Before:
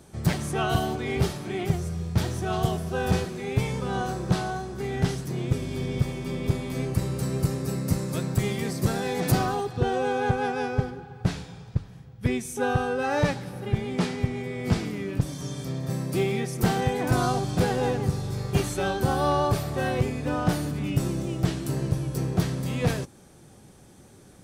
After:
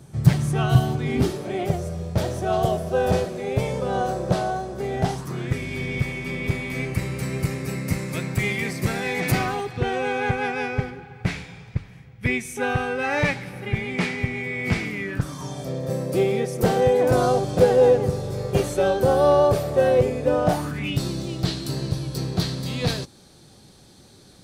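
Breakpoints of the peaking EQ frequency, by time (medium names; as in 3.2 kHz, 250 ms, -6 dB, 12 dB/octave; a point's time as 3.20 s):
peaking EQ +14.5 dB 0.6 oct
1.00 s 130 Hz
1.47 s 580 Hz
4.96 s 580 Hz
5.59 s 2.2 kHz
15.00 s 2.2 kHz
15.74 s 520 Hz
20.44 s 520 Hz
20.99 s 4.2 kHz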